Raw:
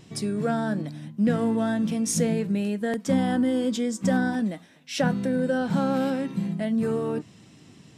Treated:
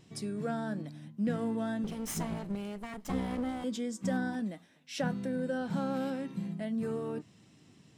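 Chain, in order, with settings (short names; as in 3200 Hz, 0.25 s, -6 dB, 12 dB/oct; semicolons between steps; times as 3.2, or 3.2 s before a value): 1.84–3.64 minimum comb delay 0.98 ms; gain -9 dB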